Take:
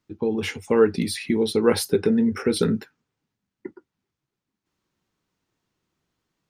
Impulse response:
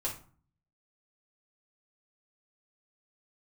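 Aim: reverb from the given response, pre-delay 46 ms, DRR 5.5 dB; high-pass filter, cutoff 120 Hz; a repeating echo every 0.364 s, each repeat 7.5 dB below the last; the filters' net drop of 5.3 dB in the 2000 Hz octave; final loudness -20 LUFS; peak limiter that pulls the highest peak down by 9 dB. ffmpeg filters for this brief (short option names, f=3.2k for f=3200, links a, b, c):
-filter_complex "[0:a]highpass=120,equalizer=f=2k:t=o:g=-7,alimiter=limit=-15.5dB:level=0:latency=1,aecho=1:1:364|728|1092|1456|1820:0.422|0.177|0.0744|0.0312|0.0131,asplit=2[a][b];[1:a]atrim=start_sample=2205,adelay=46[c];[b][c]afir=irnorm=-1:irlink=0,volume=-8.5dB[d];[a][d]amix=inputs=2:normalize=0,volume=4.5dB"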